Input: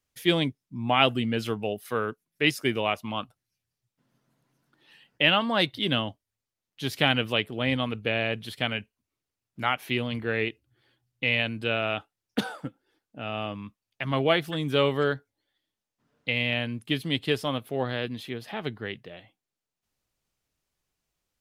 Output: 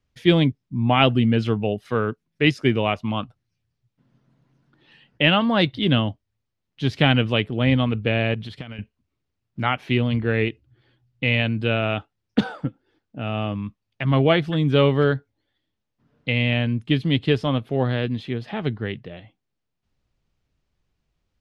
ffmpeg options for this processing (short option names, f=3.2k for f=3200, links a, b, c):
-filter_complex "[0:a]asettb=1/sr,asplit=3[a][b][c];[a]atrim=end=8.344[d];[b]atrim=start=8.34:end=8.79,asetpts=PTS-STARTPTS,afade=t=in:d=0.004:c=qsin,afade=t=out:st=0.446:d=0.004:c=qsin,acompressor=threshold=-36dB:ratio=20:attack=3.2:release=140:knee=1:detection=peak[e];[c]atrim=start=8.786[f];[d][e]acrossfade=d=0.004:c1=hsin:c2=qsin[g];[g][f]acrossfade=d=0.004:c1=qsin:c2=hsin,lowpass=4.6k,lowshelf=f=260:g=11.5,volume=2.5dB"